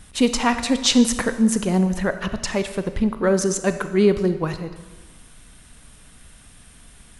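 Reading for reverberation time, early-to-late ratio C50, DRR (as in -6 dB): 1.3 s, 10.5 dB, 9.5 dB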